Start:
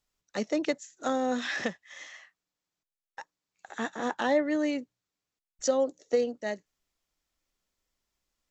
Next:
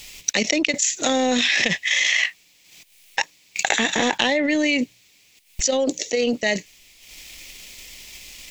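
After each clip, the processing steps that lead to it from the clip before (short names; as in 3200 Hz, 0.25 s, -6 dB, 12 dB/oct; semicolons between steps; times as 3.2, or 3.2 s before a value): resonant high shelf 1800 Hz +8.5 dB, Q 3; transient shaper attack +9 dB, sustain -10 dB; fast leveller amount 100%; gain -6.5 dB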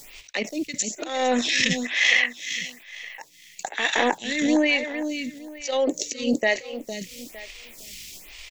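auto swell 0.183 s; feedback echo 0.458 s, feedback 28%, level -8.5 dB; photocell phaser 1.1 Hz; gain +2 dB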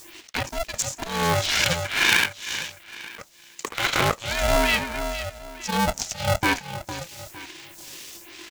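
polarity switched at an audio rate 340 Hz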